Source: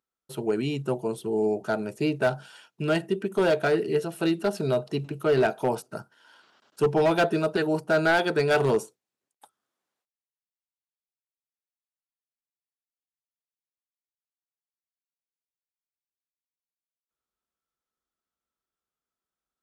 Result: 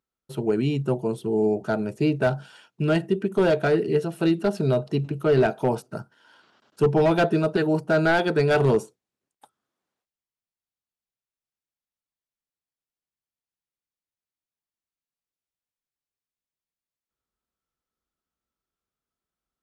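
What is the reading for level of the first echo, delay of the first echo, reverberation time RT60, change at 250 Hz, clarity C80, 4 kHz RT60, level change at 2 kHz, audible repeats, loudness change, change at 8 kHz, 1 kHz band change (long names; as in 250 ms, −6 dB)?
no echo audible, no echo audible, no reverb audible, +4.0 dB, no reverb audible, no reverb audible, 0.0 dB, no echo audible, +2.5 dB, can't be measured, +0.5 dB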